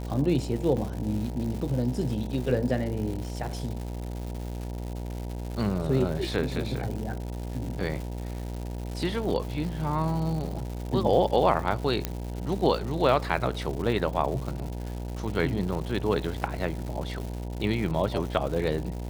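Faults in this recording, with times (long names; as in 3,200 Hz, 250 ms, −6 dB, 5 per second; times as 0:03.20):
mains buzz 60 Hz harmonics 16 −34 dBFS
surface crackle 270 per second −34 dBFS
0:00.77: drop-out 3.8 ms
0:12.05: click −11 dBFS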